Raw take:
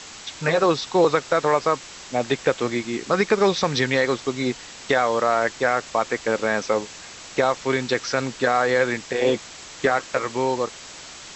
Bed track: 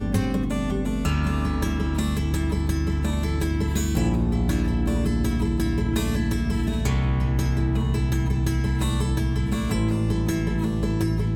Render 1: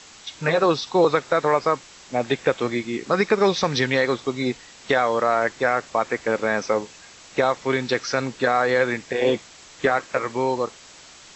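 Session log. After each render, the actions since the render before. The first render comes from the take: noise print and reduce 6 dB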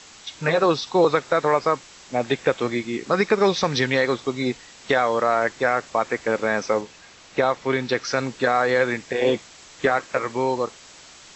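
6.81–8.05 s: distance through air 58 m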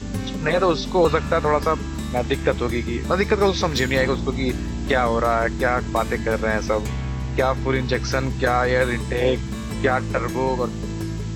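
add bed track -4.5 dB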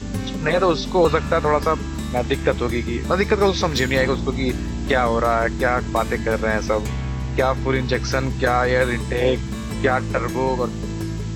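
trim +1 dB

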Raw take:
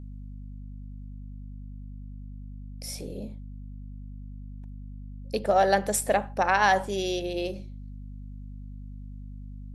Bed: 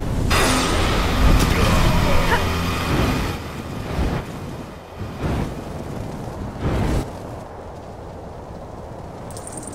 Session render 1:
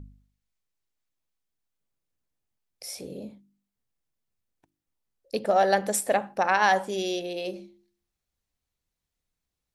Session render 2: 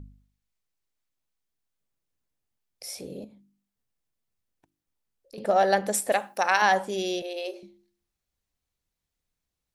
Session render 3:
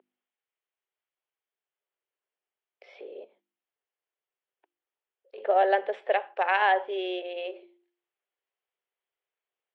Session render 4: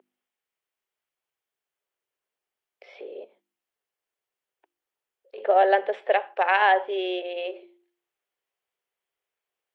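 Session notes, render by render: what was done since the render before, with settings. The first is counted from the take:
de-hum 50 Hz, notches 7
3.24–5.38 s: compression 2:1, threshold -52 dBFS; 6.12–6.62 s: RIAA curve recording; 7.22–7.63 s: steep high-pass 370 Hz
Chebyshev band-pass 380–3200 Hz, order 4; dynamic bell 1.3 kHz, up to -5 dB, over -39 dBFS, Q 2.7
trim +3.5 dB

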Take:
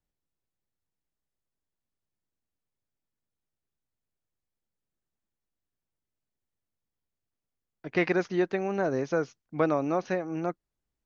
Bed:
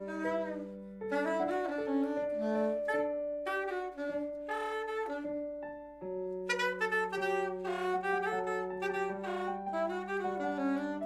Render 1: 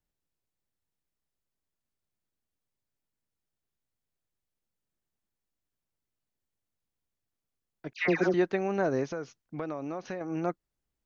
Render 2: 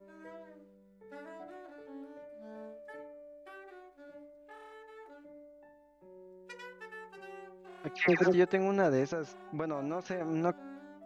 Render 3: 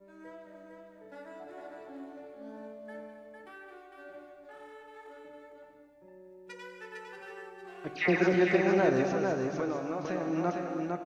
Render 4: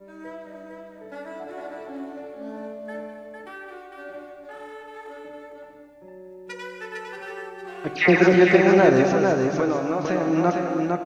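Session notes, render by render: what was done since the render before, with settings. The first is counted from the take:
7.93–8.34 s: phase dispersion lows, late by 119 ms, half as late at 1.5 kHz; 9.09–10.21 s: compression 3:1, threshold -34 dBFS
add bed -15.5 dB
on a send: delay 454 ms -4 dB; on the sum: gated-style reverb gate 360 ms flat, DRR 4.5 dB
trim +10 dB

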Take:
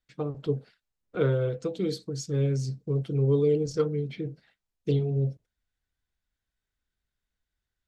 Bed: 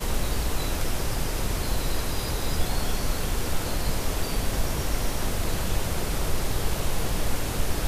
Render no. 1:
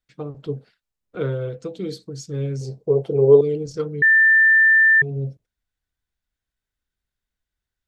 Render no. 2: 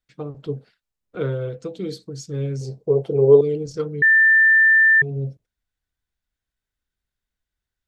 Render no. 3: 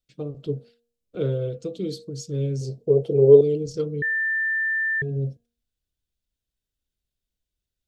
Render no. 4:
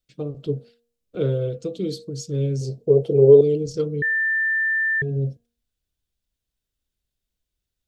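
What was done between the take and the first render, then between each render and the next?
2.61–3.41 s: high-order bell 610 Hz +15.5 dB; 4.02–5.02 s: bleep 1.78 kHz -10.5 dBFS
no audible change
high-order bell 1.3 kHz -10.5 dB; de-hum 235.5 Hz, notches 7
trim +2.5 dB; peak limiter -3 dBFS, peak gain reduction 3 dB

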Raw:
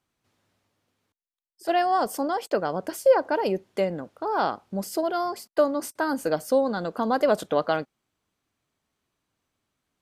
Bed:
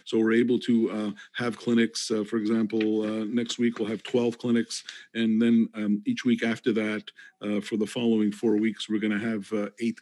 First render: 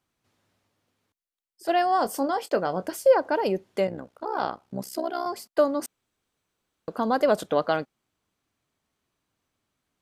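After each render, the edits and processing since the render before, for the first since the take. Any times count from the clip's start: 1.98–2.87 s: doubling 22 ms -11 dB; 3.87–5.26 s: AM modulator 64 Hz, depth 70%; 5.86–6.88 s: room tone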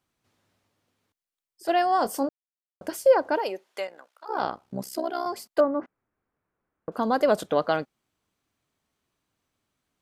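2.29–2.81 s: mute; 3.38–4.28 s: high-pass 490 Hz -> 1.4 kHz; 5.60–6.92 s: low-pass 1.9 kHz 24 dB/octave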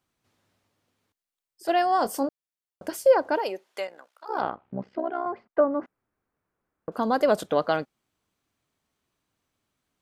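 4.40–5.69 s: low-pass 3 kHz -> 1.8 kHz 24 dB/octave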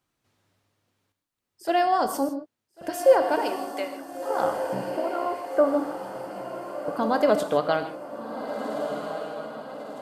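on a send: echo that smears into a reverb 1481 ms, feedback 52%, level -7.5 dB; on the sum: gated-style reverb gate 180 ms flat, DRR 8 dB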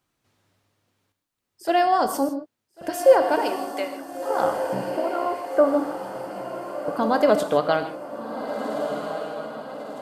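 trim +2.5 dB

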